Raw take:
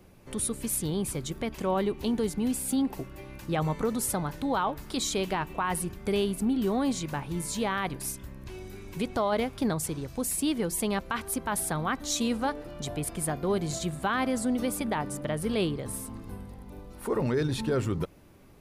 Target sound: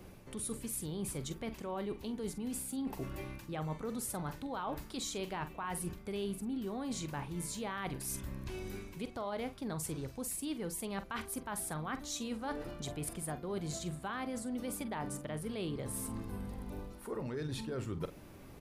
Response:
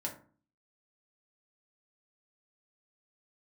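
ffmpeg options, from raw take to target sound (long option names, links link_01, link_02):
-filter_complex "[0:a]areverse,acompressor=threshold=-40dB:ratio=6,areverse,asplit=2[link_01][link_02];[link_02]adelay=45,volume=-12dB[link_03];[link_01][link_03]amix=inputs=2:normalize=0,volume=2.5dB"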